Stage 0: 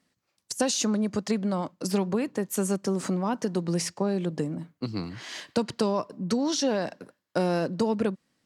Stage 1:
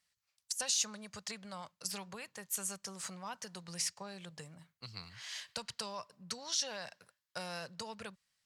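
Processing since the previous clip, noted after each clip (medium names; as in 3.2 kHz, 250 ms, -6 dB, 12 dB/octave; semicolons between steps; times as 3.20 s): amplifier tone stack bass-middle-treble 10-0-10; trim -2.5 dB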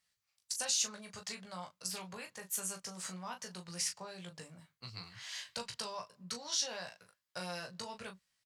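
early reflections 17 ms -5 dB, 38 ms -8 dB; trim -1.5 dB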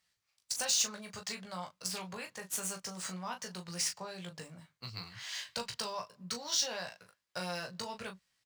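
median filter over 3 samples; trim +3.5 dB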